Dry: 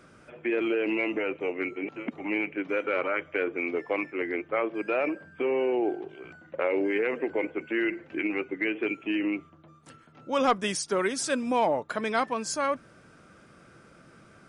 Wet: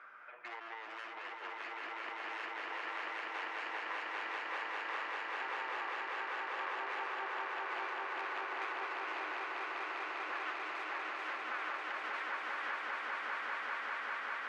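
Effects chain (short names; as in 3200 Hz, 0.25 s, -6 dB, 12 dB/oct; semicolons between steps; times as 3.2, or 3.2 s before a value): self-modulated delay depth 0.69 ms; Butterworth band-pass 1400 Hz, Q 1.1; compressor 3:1, threshold -54 dBFS, peak gain reduction 23 dB; swelling echo 0.198 s, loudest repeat 8, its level -3.5 dB; gain +5 dB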